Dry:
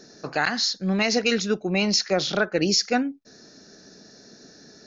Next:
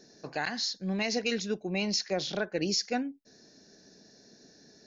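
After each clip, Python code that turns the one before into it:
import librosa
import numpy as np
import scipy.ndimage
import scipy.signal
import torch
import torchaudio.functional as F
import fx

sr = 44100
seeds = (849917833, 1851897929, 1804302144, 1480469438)

y = fx.peak_eq(x, sr, hz=1300.0, db=-12.0, octaves=0.23)
y = y * 10.0 ** (-8.0 / 20.0)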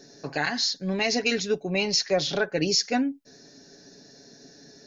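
y = x + 0.51 * np.pad(x, (int(7.2 * sr / 1000.0), 0))[:len(x)]
y = y * 10.0 ** (5.5 / 20.0)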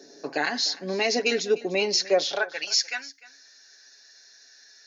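y = fx.filter_sweep_highpass(x, sr, from_hz=330.0, to_hz=1600.0, start_s=2.09, end_s=2.7, q=1.4)
y = y + 10.0 ** (-19.5 / 20.0) * np.pad(y, (int(300 * sr / 1000.0), 0))[:len(y)]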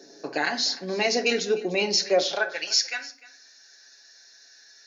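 y = fx.room_shoebox(x, sr, seeds[0], volume_m3=440.0, walls='furnished', distance_m=0.78)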